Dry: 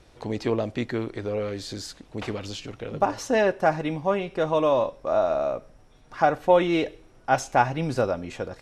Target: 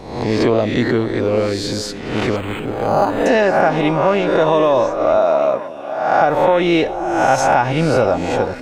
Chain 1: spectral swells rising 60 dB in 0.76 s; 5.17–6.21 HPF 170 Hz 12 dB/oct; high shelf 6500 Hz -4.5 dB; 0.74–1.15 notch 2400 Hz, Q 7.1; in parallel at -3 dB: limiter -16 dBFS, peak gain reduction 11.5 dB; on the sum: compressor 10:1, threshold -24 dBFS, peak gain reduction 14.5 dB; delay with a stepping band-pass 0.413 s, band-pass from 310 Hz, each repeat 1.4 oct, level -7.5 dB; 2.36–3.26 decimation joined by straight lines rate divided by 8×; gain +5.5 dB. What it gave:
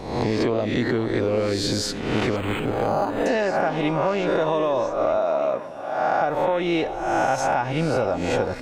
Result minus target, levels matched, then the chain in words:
compressor: peak gain reduction +8.5 dB
spectral swells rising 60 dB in 0.76 s; 5.17–6.21 HPF 170 Hz 12 dB/oct; high shelf 6500 Hz -4.5 dB; 0.74–1.15 notch 2400 Hz, Q 7.1; in parallel at -3 dB: limiter -16 dBFS, peak gain reduction 11.5 dB; on the sum: compressor 10:1, threshold -14.5 dBFS, peak gain reduction 6 dB; delay with a stepping band-pass 0.413 s, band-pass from 310 Hz, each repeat 1.4 oct, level -7.5 dB; 2.36–3.26 decimation joined by straight lines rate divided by 8×; gain +5.5 dB

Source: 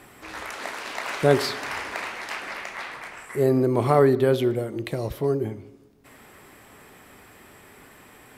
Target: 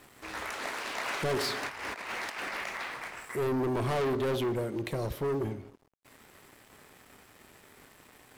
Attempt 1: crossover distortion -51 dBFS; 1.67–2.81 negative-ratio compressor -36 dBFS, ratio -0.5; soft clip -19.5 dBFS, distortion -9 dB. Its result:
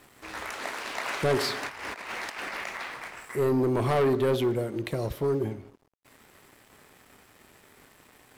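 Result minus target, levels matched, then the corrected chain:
soft clip: distortion -5 dB
crossover distortion -51 dBFS; 1.67–2.81 negative-ratio compressor -36 dBFS, ratio -0.5; soft clip -27 dBFS, distortion -4 dB

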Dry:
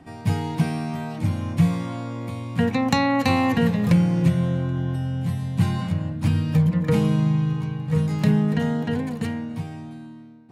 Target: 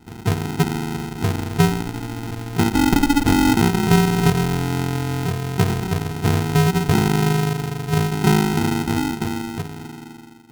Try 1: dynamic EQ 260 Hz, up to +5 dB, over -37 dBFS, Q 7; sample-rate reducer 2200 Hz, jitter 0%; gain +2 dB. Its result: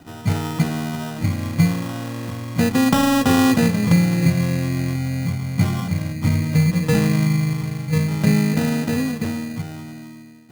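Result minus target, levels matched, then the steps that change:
sample-rate reducer: distortion -14 dB
change: sample-rate reducer 570 Hz, jitter 0%

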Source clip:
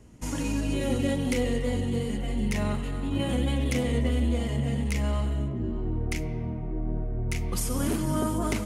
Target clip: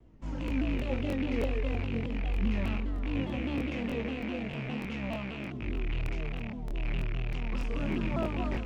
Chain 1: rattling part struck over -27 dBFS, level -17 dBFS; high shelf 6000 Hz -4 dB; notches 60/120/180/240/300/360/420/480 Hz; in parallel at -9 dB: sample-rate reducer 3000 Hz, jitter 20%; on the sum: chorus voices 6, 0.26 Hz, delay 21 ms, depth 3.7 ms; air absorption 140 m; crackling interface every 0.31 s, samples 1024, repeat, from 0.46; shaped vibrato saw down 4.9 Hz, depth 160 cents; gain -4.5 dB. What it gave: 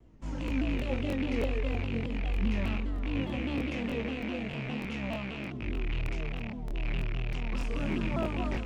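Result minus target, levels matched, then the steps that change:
8000 Hz band +2.5 dB
change: high shelf 6000 Hz -14 dB

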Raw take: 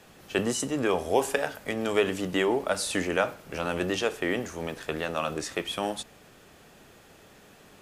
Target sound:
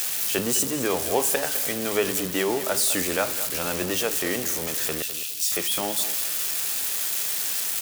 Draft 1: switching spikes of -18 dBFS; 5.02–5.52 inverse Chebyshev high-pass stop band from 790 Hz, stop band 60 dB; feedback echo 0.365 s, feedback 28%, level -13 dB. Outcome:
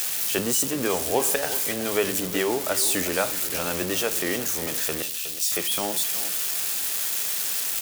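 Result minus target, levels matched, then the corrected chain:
echo 0.158 s late
switching spikes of -18 dBFS; 5.02–5.52 inverse Chebyshev high-pass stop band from 790 Hz, stop band 60 dB; feedback echo 0.207 s, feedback 28%, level -13 dB

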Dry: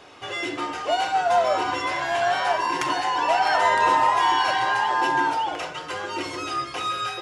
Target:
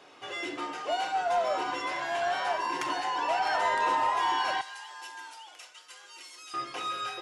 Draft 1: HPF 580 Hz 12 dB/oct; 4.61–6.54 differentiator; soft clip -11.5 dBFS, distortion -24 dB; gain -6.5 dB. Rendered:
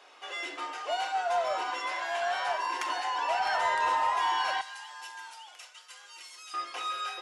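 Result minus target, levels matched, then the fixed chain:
125 Hz band -8.5 dB
HPF 170 Hz 12 dB/oct; 4.61–6.54 differentiator; soft clip -11.5 dBFS, distortion -23 dB; gain -6.5 dB

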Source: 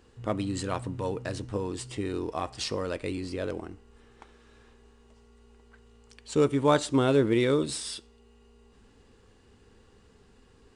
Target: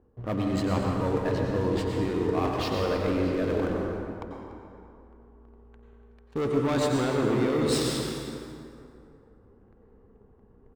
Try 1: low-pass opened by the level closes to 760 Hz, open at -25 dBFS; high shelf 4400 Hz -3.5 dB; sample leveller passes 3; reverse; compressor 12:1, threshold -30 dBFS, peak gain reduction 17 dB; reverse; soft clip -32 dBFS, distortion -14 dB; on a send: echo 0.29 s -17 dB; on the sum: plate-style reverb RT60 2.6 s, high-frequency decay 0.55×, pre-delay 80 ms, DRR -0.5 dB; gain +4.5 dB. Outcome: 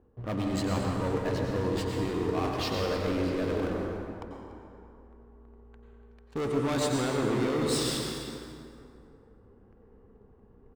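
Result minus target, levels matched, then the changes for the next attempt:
soft clip: distortion +11 dB; 8000 Hz band +3.5 dB
change: high shelf 4400 Hz -11.5 dB; change: soft clip -24 dBFS, distortion -25 dB

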